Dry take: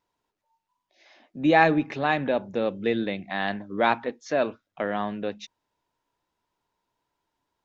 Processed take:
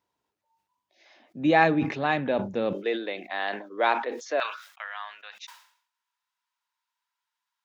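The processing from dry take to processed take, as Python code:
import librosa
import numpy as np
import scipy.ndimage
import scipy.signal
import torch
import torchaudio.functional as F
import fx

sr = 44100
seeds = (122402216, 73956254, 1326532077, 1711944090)

y = fx.highpass(x, sr, hz=fx.steps((0.0, 55.0), (2.73, 350.0), (4.4, 1100.0)), slope=24)
y = fx.sustainer(y, sr, db_per_s=100.0)
y = y * librosa.db_to_amplitude(-1.5)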